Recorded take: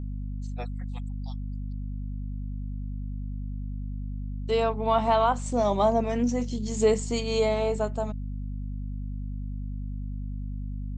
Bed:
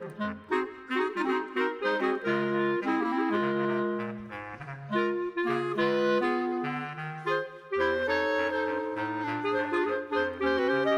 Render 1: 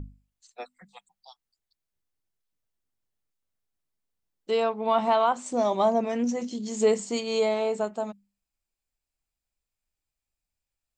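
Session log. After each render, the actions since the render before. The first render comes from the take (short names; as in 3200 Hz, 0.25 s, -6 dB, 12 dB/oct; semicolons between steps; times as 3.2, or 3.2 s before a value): notches 50/100/150/200/250 Hz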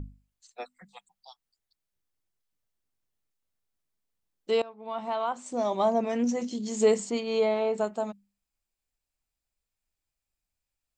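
4.62–6.24 fade in, from -21 dB; 7.1–7.78 air absorption 160 m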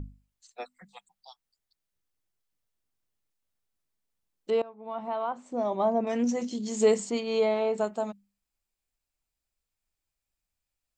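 4.5–6.07 LPF 1300 Hz 6 dB/oct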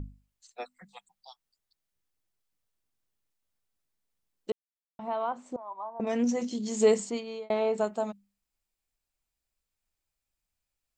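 4.52–4.99 mute; 5.56–6 band-pass 1000 Hz, Q 8.4; 6.98–7.5 fade out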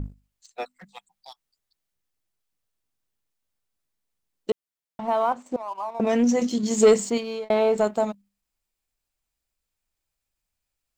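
in parallel at 0 dB: level quantiser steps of 11 dB; on the sum: sample leveller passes 1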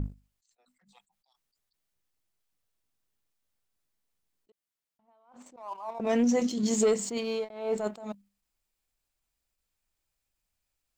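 compressor 6:1, threshold -21 dBFS, peak gain reduction 9.5 dB; attack slew limiter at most 100 dB/s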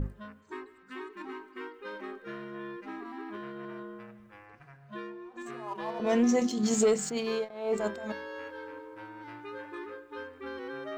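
add bed -13.5 dB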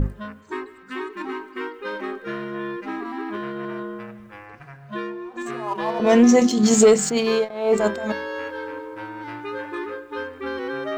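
gain +11 dB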